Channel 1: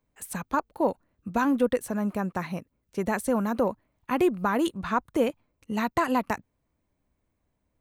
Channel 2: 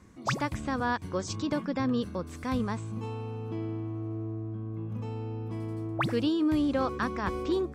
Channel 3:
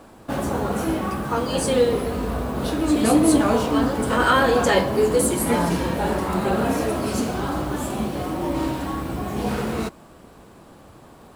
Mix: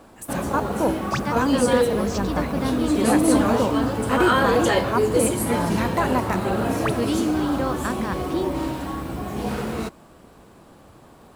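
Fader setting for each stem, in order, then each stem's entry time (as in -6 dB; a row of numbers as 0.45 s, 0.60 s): +1.5 dB, +2.5 dB, -2.0 dB; 0.00 s, 0.85 s, 0.00 s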